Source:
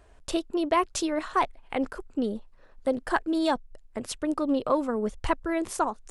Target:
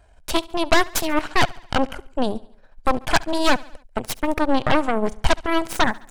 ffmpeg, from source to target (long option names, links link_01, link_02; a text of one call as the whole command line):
ffmpeg -i in.wav -af "aecho=1:1:1.3:0.48,aeval=exprs='0.335*(cos(1*acos(clip(val(0)/0.335,-1,1)))-cos(1*PI/2))+0.0473*(cos(3*acos(clip(val(0)/0.335,-1,1)))-cos(3*PI/2))+0.0944*(cos(8*acos(clip(val(0)/0.335,-1,1)))-cos(8*PI/2))':channel_layout=same,aecho=1:1:70|140|210|280:0.0794|0.0421|0.0223|0.0118,volume=5dB" out.wav